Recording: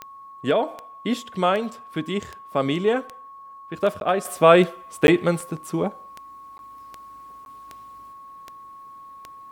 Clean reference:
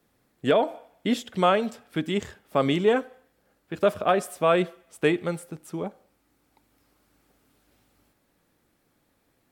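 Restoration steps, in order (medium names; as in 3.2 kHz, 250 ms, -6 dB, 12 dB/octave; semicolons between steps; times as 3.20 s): de-click; band-stop 1.1 kHz, Q 30; interpolate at 4.00/5.07/6.58/7.45 s, 11 ms; gain correction -7.5 dB, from 4.25 s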